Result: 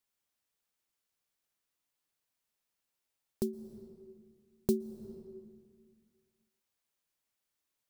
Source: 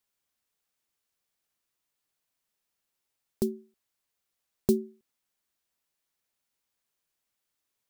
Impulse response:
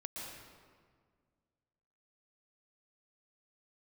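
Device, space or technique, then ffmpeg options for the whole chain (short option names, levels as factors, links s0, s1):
ducked reverb: -filter_complex "[0:a]asplit=3[s0][s1][s2];[1:a]atrim=start_sample=2205[s3];[s1][s3]afir=irnorm=-1:irlink=0[s4];[s2]apad=whole_len=348073[s5];[s4][s5]sidechaincompress=threshold=0.00562:ratio=3:attack=7.6:release=201,volume=0.562[s6];[s0][s6]amix=inputs=2:normalize=0,volume=0.531"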